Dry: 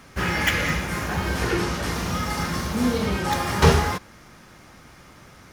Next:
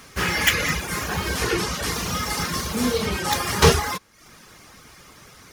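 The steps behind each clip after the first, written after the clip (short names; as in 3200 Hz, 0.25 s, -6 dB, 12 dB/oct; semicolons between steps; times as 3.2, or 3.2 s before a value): reverb removal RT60 0.62 s; high shelf 2400 Hz +10 dB; small resonant body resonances 440/1100 Hz, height 6 dB; gain -1 dB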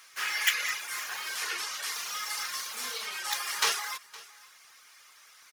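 HPF 1300 Hz 12 dB/oct; echo 0.514 s -21 dB; crackle 18/s -42 dBFS; gain -6 dB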